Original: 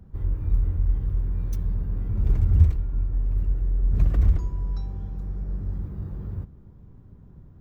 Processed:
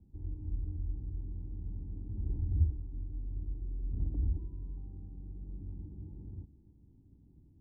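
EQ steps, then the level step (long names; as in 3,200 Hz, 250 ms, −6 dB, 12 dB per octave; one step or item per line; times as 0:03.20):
formant resonators in series u
high-frequency loss of the air 390 metres
parametric band 71 Hz +7.5 dB 1.4 octaves
−3.5 dB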